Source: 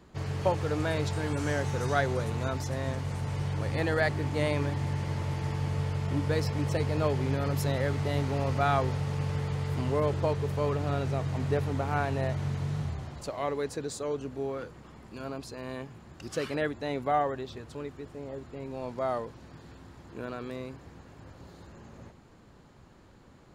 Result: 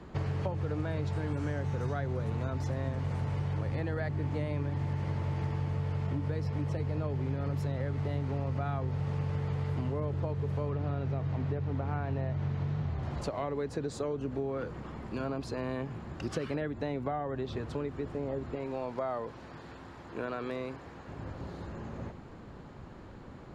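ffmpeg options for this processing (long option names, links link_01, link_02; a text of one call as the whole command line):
ffmpeg -i in.wav -filter_complex "[0:a]asettb=1/sr,asplit=3[link_01][link_02][link_03];[link_01]atrim=end=10.704[link_04];[link_02]atrim=start=10.7:end=13.03,asetpts=PTS-STARTPTS,afade=type=in:duration=0.004:curve=qsin,afade=type=out:start_time=2.326:duration=0.004:curve=qsin,lowpass=5600[link_05];[link_03]atrim=start=13.026[link_06];[link_04][link_05]acrossfade=duration=0.004:curve1=hsin:curve2=qsin[link_07];[link_07][link_06]acrossfade=duration=0.004:curve1=qsin:curve2=hsin,asettb=1/sr,asplit=3[link_08][link_09][link_10];[link_08]atrim=end=18.554[link_11];[link_09]atrim=start=18.55:end=21.08,asetpts=PTS-STARTPTS,afade=type=in:duration=0.004:curve=qsin,afade=type=out:start_time=2.526:duration=0.004:curve=qsin,lowshelf=frequency=320:gain=-10.5[link_12];[link_10]atrim=start=21.076[link_13];[link_11][link_12]acrossfade=duration=0.004:curve1=hsin:curve2=qsin[link_14];[link_14][link_13]acrossfade=duration=0.004:curve1=qsin:curve2=hsin,acrossover=split=260[link_15][link_16];[link_16]acompressor=threshold=-39dB:ratio=2[link_17];[link_15][link_17]amix=inputs=2:normalize=0,aemphasis=mode=reproduction:type=75kf,acompressor=threshold=-38dB:ratio=6,volume=8dB" out.wav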